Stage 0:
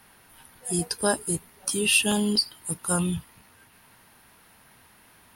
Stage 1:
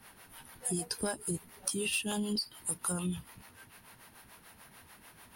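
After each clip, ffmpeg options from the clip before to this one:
-filter_complex "[0:a]aeval=exprs='0.447*(cos(1*acos(clip(val(0)/0.447,-1,1)))-cos(1*PI/2))+0.0398*(cos(5*acos(clip(val(0)/0.447,-1,1)))-cos(5*PI/2))':c=same,acrossover=split=400[a][b];[a]aeval=exprs='val(0)*(1-0.7/2+0.7/2*cos(2*PI*6.8*n/s))':c=same[c];[b]aeval=exprs='val(0)*(1-0.7/2-0.7/2*cos(2*PI*6.8*n/s))':c=same[d];[c][d]amix=inputs=2:normalize=0,acompressor=threshold=-30dB:ratio=16"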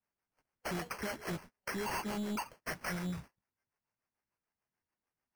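-af "agate=range=-37dB:threshold=-46dB:ratio=16:detection=peak,acrusher=samples=12:mix=1:aa=0.000001,asoftclip=type=tanh:threshold=-32.5dB"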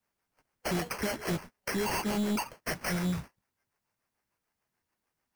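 -filter_complex "[0:a]acrossover=split=880|1900[a][b][c];[b]alimiter=level_in=22dB:limit=-24dB:level=0:latency=1,volume=-22dB[d];[a][d][c]amix=inputs=3:normalize=0,acrusher=bits=5:mode=log:mix=0:aa=0.000001,volume=7.5dB"

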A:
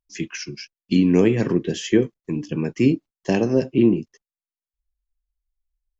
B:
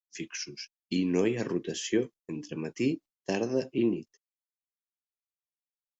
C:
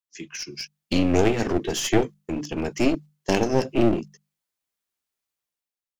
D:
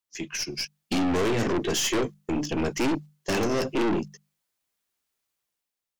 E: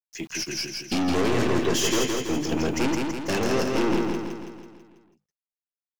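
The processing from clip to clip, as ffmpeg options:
-af "agate=range=-33dB:threshold=-36dB:ratio=3:detection=peak,bass=f=250:g=-7,treble=f=4k:g=6,volume=-8dB"
-af "bandreject=f=50:t=h:w=6,bandreject=f=100:t=h:w=6,bandreject=f=150:t=h:w=6,bandreject=f=200:t=h:w=6,dynaudnorm=f=100:g=11:m=11dB,aeval=exprs='clip(val(0),-1,0.0447)':c=same"
-af "aeval=exprs='(tanh(22.4*val(0)+0.3)-tanh(0.3))/22.4':c=same,volume=5dB"
-filter_complex "[0:a]aeval=exprs='val(0)*gte(abs(val(0)),0.00473)':c=same,asplit=2[a][b];[b]aecho=0:1:164|328|492|656|820|984|1148:0.668|0.361|0.195|0.105|0.0568|0.0307|0.0166[c];[a][c]amix=inputs=2:normalize=0"

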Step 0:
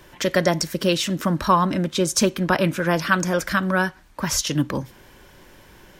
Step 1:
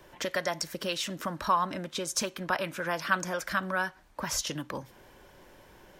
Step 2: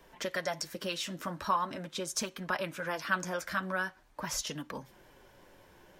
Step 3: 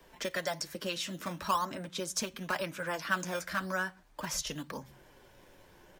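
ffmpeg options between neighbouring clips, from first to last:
-filter_complex "[0:a]equalizer=f=640:t=o:w=1.6:g=6.5,acrossover=split=880|930[a][b][c];[a]acompressor=threshold=-26dB:ratio=6[d];[d][b][c]amix=inputs=3:normalize=0,volume=-8.5dB"
-af "flanger=delay=4.3:depth=7.2:regen=-34:speed=0.43:shape=sinusoidal"
-filter_complex "[0:a]acrossover=split=140|930|2800[a][b][c][d];[a]aecho=1:1:119:0.631[e];[b]acrusher=samples=10:mix=1:aa=0.000001:lfo=1:lforange=10:lforate=0.96[f];[e][f][c][d]amix=inputs=4:normalize=0"

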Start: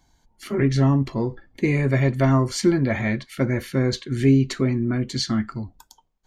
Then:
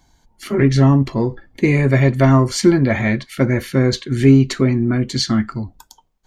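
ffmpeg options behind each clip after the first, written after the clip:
-af "aeval=exprs='0.422*(cos(1*acos(clip(val(0)/0.422,-1,1)))-cos(1*PI/2))+0.00376*(cos(7*acos(clip(val(0)/0.422,-1,1)))-cos(7*PI/2))':c=same,volume=6dB"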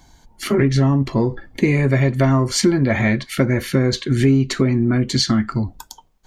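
-af "acompressor=threshold=-22dB:ratio=3,volume=6.5dB"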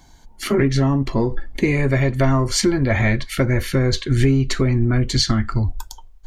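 -af "asubboost=boost=11.5:cutoff=58"

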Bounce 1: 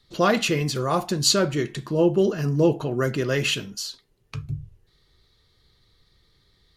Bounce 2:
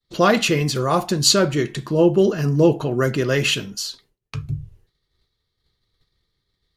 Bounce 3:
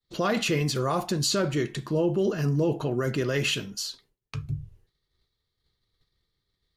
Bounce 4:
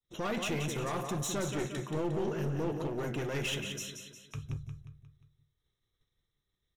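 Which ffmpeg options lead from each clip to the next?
-af "agate=range=-33dB:threshold=-51dB:ratio=3:detection=peak,volume=4dB"
-af "alimiter=limit=-11.5dB:level=0:latency=1:release=24,volume=-5dB"
-af "asuperstop=centerf=4600:order=8:qfactor=3.5,aecho=1:1:178|356|534|712|890:0.447|0.205|0.0945|0.0435|0.02,aeval=exprs='clip(val(0),-1,0.0422)':c=same,volume=-6.5dB"

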